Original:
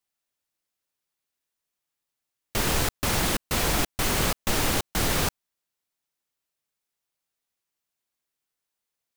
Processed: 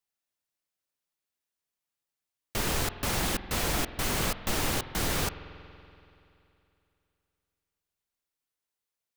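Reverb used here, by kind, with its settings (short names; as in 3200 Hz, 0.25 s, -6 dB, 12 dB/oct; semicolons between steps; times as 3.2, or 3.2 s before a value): spring tank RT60 2.8 s, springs 47 ms, chirp 35 ms, DRR 12 dB; gain -4.5 dB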